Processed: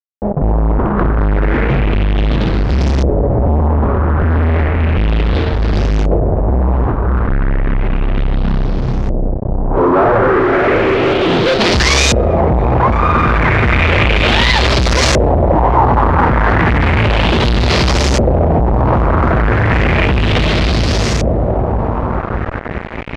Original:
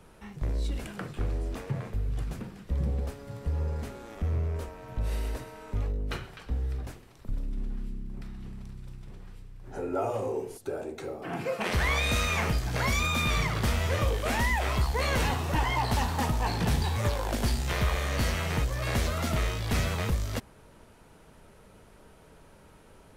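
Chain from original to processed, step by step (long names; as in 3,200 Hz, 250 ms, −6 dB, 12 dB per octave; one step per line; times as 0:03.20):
adaptive Wiener filter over 41 samples
dynamic equaliser 350 Hz, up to +6 dB, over −52 dBFS, Q 3.5
feedback delay with all-pass diffusion 607 ms, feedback 60%, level −7 dB
fuzz pedal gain 46 dB, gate −46 dBFS
auto-filter low-pass saw up 0.33 Hz 550–6,500 Hz
level +2.5 dB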